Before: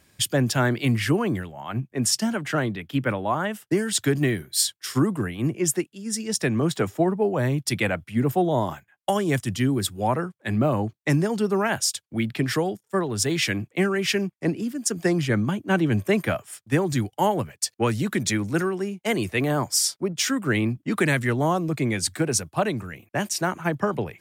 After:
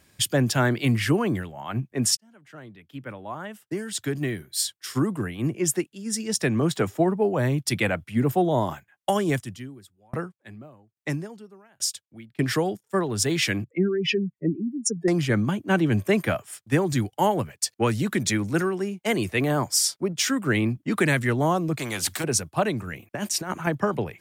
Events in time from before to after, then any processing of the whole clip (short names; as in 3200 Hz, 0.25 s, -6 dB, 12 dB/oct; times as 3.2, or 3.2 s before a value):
2.17–6 fade in
9.3–12.39 dB-ramp tremolo decaying 1.2 Hz, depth 38 dB
13.64–15.08 spectral contrast raised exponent 2.6
21.79–22.24 spectral compressor 2:1
22.87–23.67 negative-ratio compressor -27 dBFS, ratio -0.5